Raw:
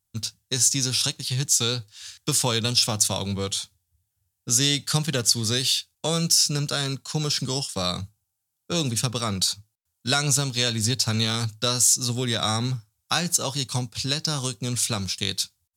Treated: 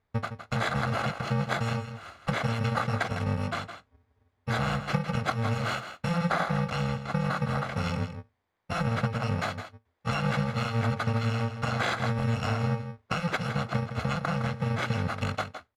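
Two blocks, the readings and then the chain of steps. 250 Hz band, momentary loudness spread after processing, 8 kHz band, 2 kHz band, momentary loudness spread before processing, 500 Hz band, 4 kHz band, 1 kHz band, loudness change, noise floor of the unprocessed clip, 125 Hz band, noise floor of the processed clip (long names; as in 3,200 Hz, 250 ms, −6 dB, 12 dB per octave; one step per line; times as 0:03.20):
−1.5 dB, 7 LU, −26.5 dB, +1.5 dB, 10 LU, −2.0 dB, −16.0 dB, +2.5 dB, −6.5 dB, −79 dBFS, −0.5 dB, −76 dBFS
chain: samples in bit-reversed order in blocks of 128 samples
low-pass filter 1,700 Hz 12 dB per octave
downward compressor 3 to 1, threshold −35 dBFS, peak gain reduction 10.5 dB
on a send: single-tap delay 162 ms −10 dB
on the sum: level +8 dB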